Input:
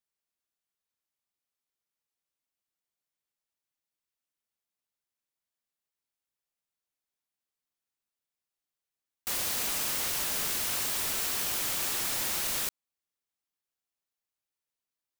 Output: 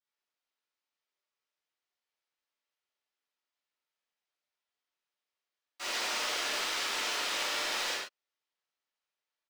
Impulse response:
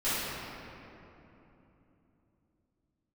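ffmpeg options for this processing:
-filter_complex "[0:a]acrossover=split=340 6500:gain=0.0631 1 0.0891[link_01][link_02][link_03];[link_01][link_02][link_03]amix=inputs=3:normalize=0,atempo=1.6[link_04];[1:a]atrim=start_sample=2205,afade=type=out:start_time=0.2:duration=0.01,atrim=end_sample=9261[link_05];[link_04][link_05]afir=irnorm=-1:irlink=0,volume=-3.5dB"

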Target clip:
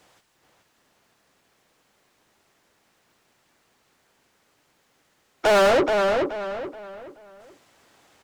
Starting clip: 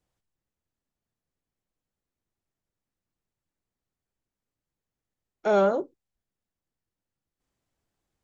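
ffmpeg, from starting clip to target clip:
ffmpeg -i in.wav -filter_complex "[0:a]asplit=2[link_01][link_02];[link_02]highpass=frequency=720:poles=1,volume=35dB,asoftclip=type=tanh:threshold=-11.5dB[link_03];[link_01][link_03]amix=inputs=2:normalize=0,lowpass=frequency=4400:poles=1,volume=-6dB,asplit=2[link_04][link_05];[link_05]adelay=427,lowpass=frequency=3900:poles=1,volume=-4dB,asplit=2[link_06][link_07];[link_07]adelay=427,lowpass=frequency=3900:poles=1,volume=0.35,asplit=2[link_08][link_09];[link_09]adelay=427,lowpass=frequency=3900:poles=1,volume=0.35,asplit=2[link_10][link_11];[link_11]adelay=427,lowpass=frequency=3900:poles=1,volume=0.35[link_12];[link_04][link_06][link_08][link_10][link_12]amix=inputs=5:normalize=0" out.wav

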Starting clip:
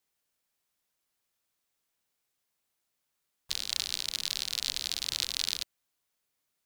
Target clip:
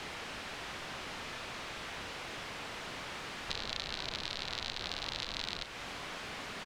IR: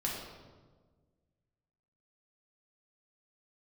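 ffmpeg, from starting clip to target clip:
-filter_complex "[0:a]aeval=exprs='val(0)+0.5*0.0211*sgn(val(0))':channel_layout=same,lowpass=2900,acrossover=split=470|1000[link_01][link_02][link_03];[link_01]alimiter=level_in=20dB:limit=-24dB:level=0:latency=1,volume=-20dB[link_04];[link_04][link_02][link_03]amix=inputs=3:normalize=0,acompressor=threshold=-41dB:ratio=2.5,asplit=2[link_05][link_06];[link_06]acrusher=bits=5:mode=log:mix=0:aa=0.000001,volume=-11dB[link_07];[link_05][link_07]amix=inputs=2:normalize=0,asplit=2[link_08][link_09];[link_09]adelay=35,volume=-12.5dB[link_10];[link_08][link_10]amix=inputs=2:normalize=0,volume=3dB"

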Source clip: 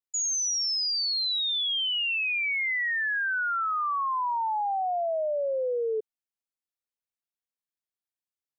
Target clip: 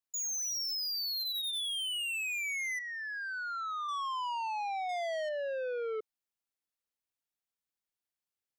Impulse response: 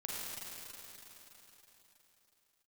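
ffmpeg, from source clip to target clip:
-filter_complex "[0:a]asplit=3[link_01][link_02][link_03];[link_01]afade=type=out:start_time=1.19:duration=0.02[link_04];[link_02]aecho=1:1:6:0.67,afade=type=in:start_time=1.19:duration=0.02,afade=type=out:start_time=1.6:duration=0.02[link_05];[link_03]afade=type=in:start_time=1.6:duration=0.02[link_06];[link_04][link_05][link_06]amix=inputs=3:normalize=0,asplit=3[link_07][link_08][link_09];[link_07]afade=type=out:start_time=2.78:duration=0.02[link_10];[link_08]lowpass=1000,afade=type=in:start_time=2.78:duration=0.02,afade=type=out:start_time=3.87:duration=0.02[link_11];[link_09]afade=type=in:start_time=3.87:duration=0.02[link_12];[link_10][link_11][link_12]amix=inputs=3:normalize=0,asettb=1/sr,asplit=3[link_13][link_14][link_15];[link_13]atrim=end=4.894[link_16];[link_14]atrim=start=4.89:end=5.29,asetpts=PTS-STARTPTS,afade=type=in:duration=0.004:curve=qsin,afade=type=out:start_time=0.396:duration=0.004:curve=qsin,acontrast=33[link_17];[link_15]atrim=start=5.286[link_18];[link_16][link_17]acrossfade=duration=0.004:curve1=hsin:curve2=qsin[link_19];[link_19][link_18]acrossfade=duration=0.004:curve1=qsin:curve2=hsin,asoftclip=type=tanh:threshold=-34dB"

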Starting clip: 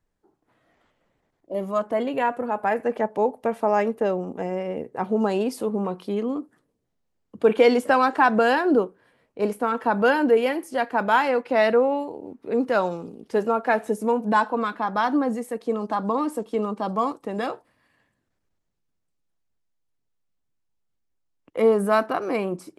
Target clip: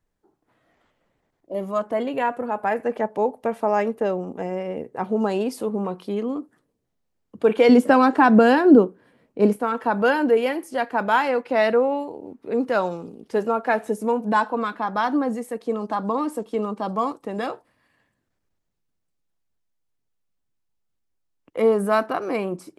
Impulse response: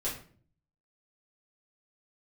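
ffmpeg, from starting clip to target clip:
-filter_complex "[0:a]asettb=1/sr,asplit=3[link_01][link_02][link_03];[link_01]atrim=end=7.694[link_04];[link_02]atrim=start=7.69:end=9.56,asetpts=PTS-STARTPTS,afade=type=in:duration=0.004:curve=qsin,afade=type=out:start_time=1.866:duration=0.004:curve=qsin,equalizer=frequency=230:width_type=o:width=1.8:gain=10[link_05];[link_03]atrim=start=9.556[link_06];[link_04][link_05]acrossfade=duration=0.004:curve1=hsin:curve2=qsin[link_07];[link_07][link_06]acrossfade=duration=0.004:curve1=qsin:curve2=hsin"

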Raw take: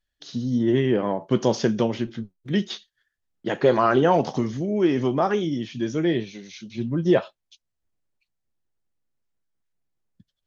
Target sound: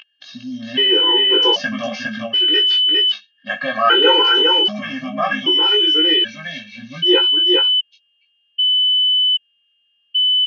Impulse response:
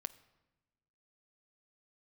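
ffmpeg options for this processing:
-filter_complex "[0:a]asettb=1/sr,asplit=3[link_01][link_02][link_03];[link_01]atrim=end=2.054[link_04];[link_02]atrim=start=2.05:end=2.53,asetpts=PTS-STARTPTS,afade=type=in:duration=0.004:curve=qsin,afade=type=out:start_time=0.476:duration=0.004:curve=qsin,acontrast=72[link_05];[link_03]atrim=start=2.526[link_06];[link_04][link_05]acrossfade=duration=0.004:curve1=hsin:curve2=qsin[link_07];[link_07][link_06]acrossfade=duration=0.004:curve1=qsin:curve2=hsin,aeval=exprs='val(0)+0.0316*sin(2*PI*3000*n/s)':channel_layout=same,highpass=380,equalizer=frequency=630:width_type=q:width=4:gain=-6,equalizer=frequency=1600:width_type=q:width=4:gain=9,equalizer=frequency=2600:width_type=q:width=4:gain=10,lowpass=frequency=5300:width=0.5412,lowpass=frequency=5300:width=1.3066,asplit=2[link_08][link_09];[link_09]adelay=19,volume=-3dB[link_10];[link_08][link_10]amix=inputs=2:normalize=0,asplit=2[link_11][link_12];[link_12]aecho=0:1:407:0.708[link_13];[link_11][link_13]amix=inputs=2:normalize=0,afftfilt=real='re*gt(sin(2*PI*0.64*pts/sr)*(1-2*mod(floor(b*sr/1024/260),2)),0)':imag='im*gt(sin(2*PI*0.64*pts/sr)*(1-2*mod(floor(b*sr/1024/260),2)),0)':win_size=1024:overlap=0.75,volume=4.5dB"

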